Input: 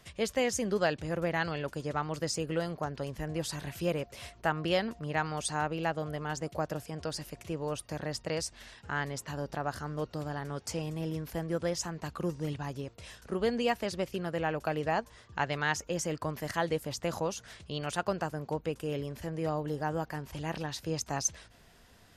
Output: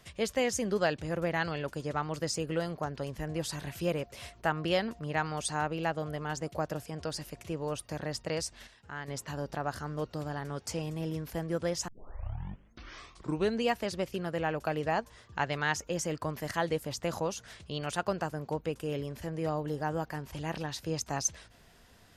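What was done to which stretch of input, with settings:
8.67–9.08 s: gain -7.5 dB
11.88 s: tape start 1.75 s

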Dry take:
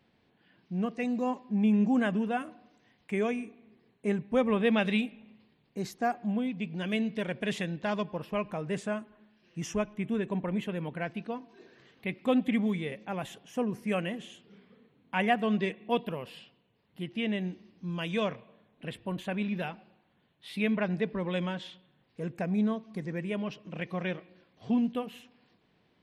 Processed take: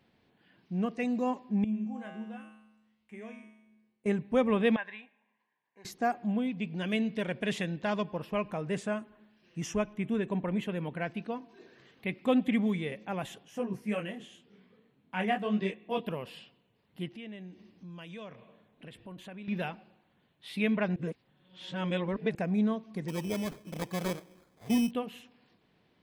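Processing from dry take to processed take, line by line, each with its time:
1.64–4.06 s: feedback comb 72 Hz, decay 0.94 s, harmonics odd, mix 90%
4.76–5.85 s: two resonant band-passes 1.3 kHz, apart 0.72 oct
13.43–16.03 s: detune thickener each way 23 cents -> 40 cents
17.08–19.48 s: compression 2.5:1, threshold -48 dBFS
20.96–22.35 s: reverse
23.08–24.91 s: sample-rate reducer 2.8 kHz

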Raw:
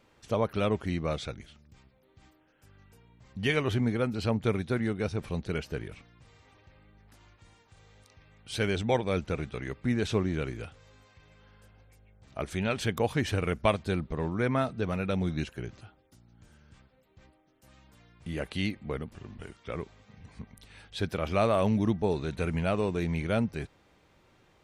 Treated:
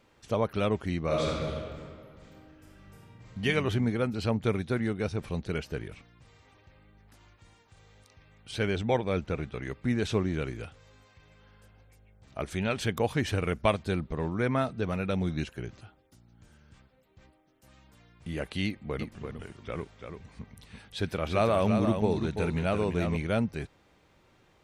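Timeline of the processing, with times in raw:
1.03–3.42 s: reverb throw, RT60 2.1 s, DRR -4 dB
8.51–9.63 s: treble shelf 5.5 kHz -8.5 dB
18.65–23.17 s: delay 339 ms -6.5 dB

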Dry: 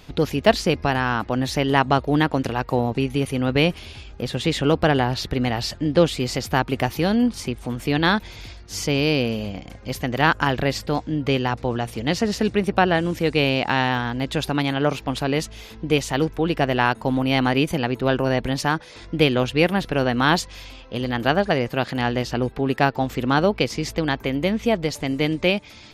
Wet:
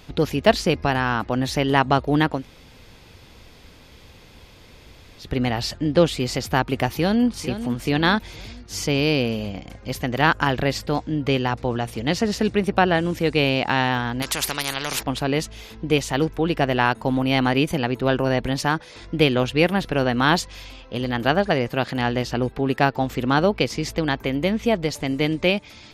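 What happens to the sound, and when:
2.38–5.26 s: room tone, crossfade 0.16 s
6.97–7.44 s: echo throw 450 ms, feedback 40%, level -11 dB
14.22–15.03 s: spectrum-flattening compressor 4:1

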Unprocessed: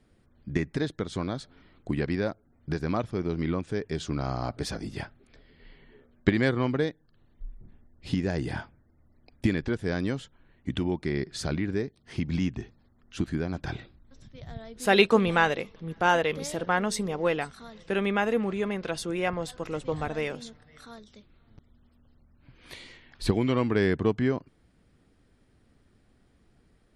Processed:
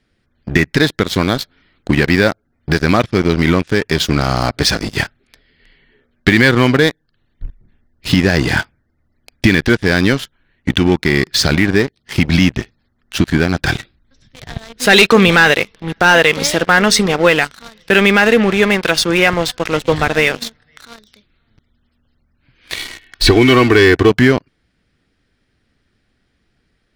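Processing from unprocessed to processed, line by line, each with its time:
22.77–24.10 s: comb 2.7 ms, depth 74%
whole clip: high-order bell 2.9 kHz +8 dB 2.3 oct; waveshaping leveller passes 3; peak limiter -6 dBFS; trim +4.5 dB

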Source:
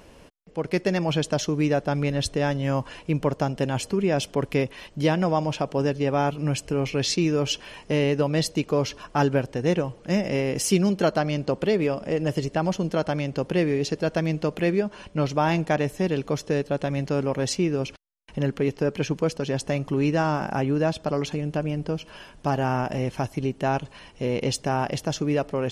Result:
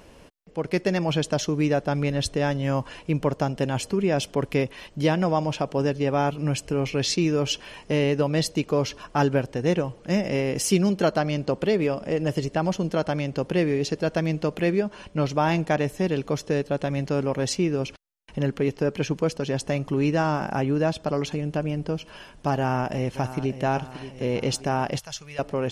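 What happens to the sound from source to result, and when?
22.56–23.64 s: echo throw 580 ms, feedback 55%, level -12.5 dB
24.99–25.39 s: amplifier tone stack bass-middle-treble 10-0-10

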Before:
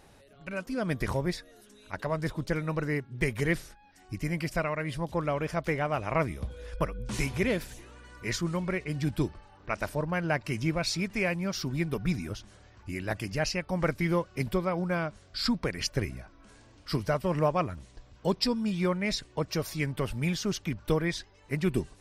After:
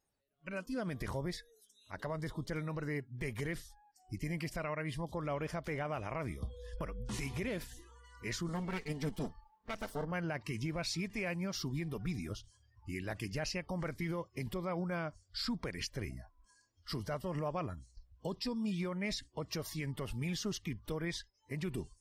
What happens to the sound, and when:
8.48–10.12 s: comb filter that takes the minimum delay 4.5 ms
whole clip: spectral noise reduction 24 dB; peak limiter -23.5 dBFS; trim -5 dB

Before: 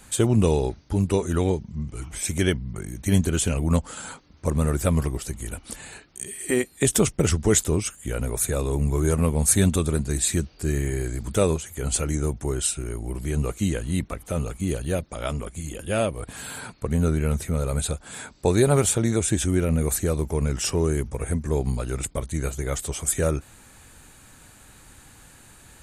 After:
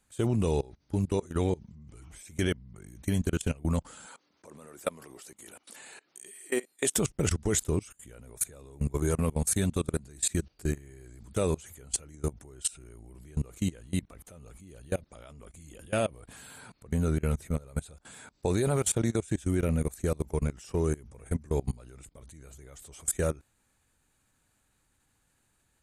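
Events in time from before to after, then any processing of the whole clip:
4.06–6.96 s: high-pass 330 Hz
7.95–10.30 s: bass shelf 76 Hz -3.5 dB
whole clip: level held to a coarse grid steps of 23 dB; trim -3 dB

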